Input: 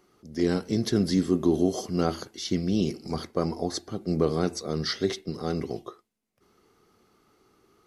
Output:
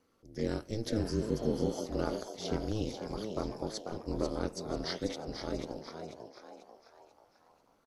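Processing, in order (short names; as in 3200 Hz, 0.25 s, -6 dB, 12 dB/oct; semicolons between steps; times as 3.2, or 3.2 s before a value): frequency-shifting echo 0.491 s, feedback 42%, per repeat +110 Hz, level -7 dB; ring modulator 110 Hz; spectral repair 1.07–1.72, 880–4500 Hz both; gain -6 dB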